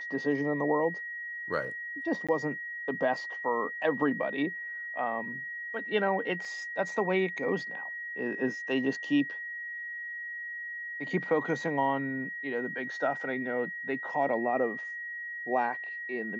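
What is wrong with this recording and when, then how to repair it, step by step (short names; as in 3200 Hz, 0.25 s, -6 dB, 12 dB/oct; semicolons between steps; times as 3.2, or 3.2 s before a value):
tone 1900 Hz -36 dBFS
2.27–2.29 gap 16 ms
6.45 gap 3.1 ms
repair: notch 1900 Hz, Q 30; interpolate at 2.27, 16 ms; interpolate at 6.45, 3.1 ms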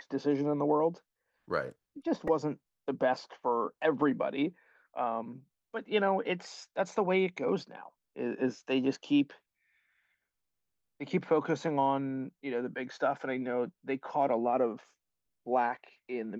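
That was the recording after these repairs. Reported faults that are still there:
none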